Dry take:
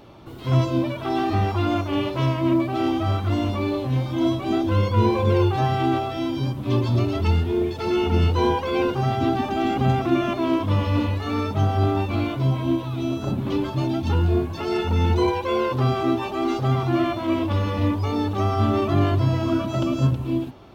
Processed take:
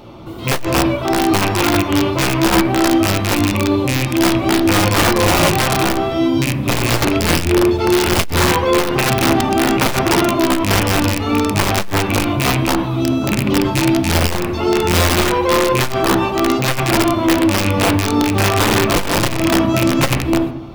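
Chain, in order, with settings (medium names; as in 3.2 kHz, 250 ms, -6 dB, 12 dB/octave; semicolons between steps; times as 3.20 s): rattle on loud lows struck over -23 dBFS, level -15 dBFS; band-stop 1.7 kHz, Q 7; in parallel at +0.5 dB: peak limiter -17.5 dBFS, peak gain reduction 9.5 dB; on the sum: integer overflow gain 10 dB; on a send at -3 dB: distance through air 290 m + reverberation RT60 0.65 s, pre-delay 6 ms; on the sum: transformer saturation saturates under 94 Hz; trim +1.5 dB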